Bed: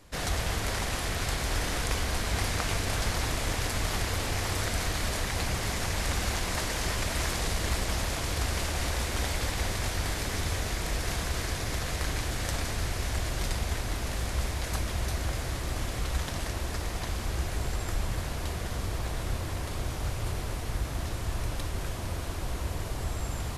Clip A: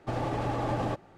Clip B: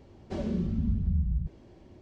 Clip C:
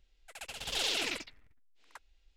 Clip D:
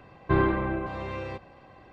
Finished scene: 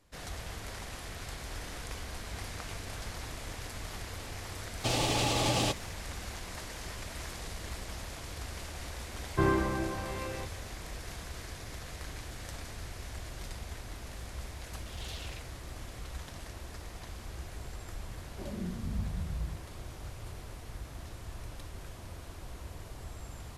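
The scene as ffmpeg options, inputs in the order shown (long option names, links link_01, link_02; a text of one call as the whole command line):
ffmpeg -i bed.wav -i cue0.wav -i cue1.wav -i cue2.wav -i cue3.wav -filter_complex "[0:a]volume=-11.5dB[link_01];[1:a]aexciter=amount=9.7:drive=3:freq=2400[link_02];[2:a]flanger=delay=19.5:depth=2.1:speed=2.3[link_03];[link_02]atrim=end=1.17,asetpts=PTS-STARTPTS,volume=-0.5dB,afade=type=in:duration=0.004:curve=hsin,afade=type=out:start_time=1.166:duration=0.004:curve=hsin,adelay=210357S[link_04];[4:a]atrim=end=1.92,asetpts=PTS-STARTPTS,volume=-4dB,afade=type=in:duration=0.004:curve=hsin,afade=type=out:start_time=1.916:duration=0.004:curve=hsin,adelay=9080[link_05];[3:a]atrim=end=2.36,asetpts=PTS-STARTPTS,volume=-14dB,afade=type=in:duration=0.004:curve=hsin,afade=type=out:start_time=2.356:duration=0.004:curve=hsin,adelay=14250[link_06];[link_03]atrim=end=2.01,asetpts=PTS-STARTPTS,volume=-5.5dB,afade=type=in:duration=0.004:curve=hsin,afade=type=out:start_time=2.006:duration=0.004:curve=hsin,adelay=18070[link_07];[link_01][link_04][link_05][link_06][link_07]amix=inputs=5:normalize=0" out.wav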